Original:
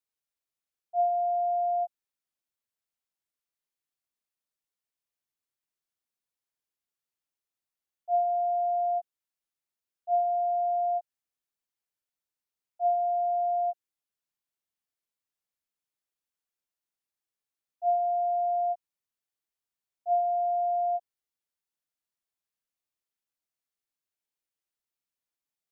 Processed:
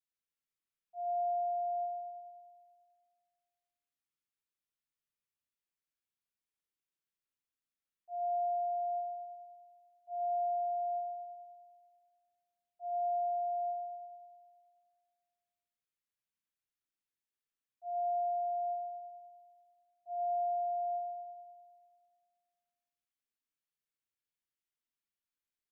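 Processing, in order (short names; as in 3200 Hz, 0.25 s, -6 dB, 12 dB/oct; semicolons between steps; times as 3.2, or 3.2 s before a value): bell 700 Hz -11 dB 0.95 oct; doubler 24 ms -12 dB; spring tank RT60 1.8 s, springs 34/49 ms, chirp 75 ms, DRR -3.5 dB; gain -7.5 dB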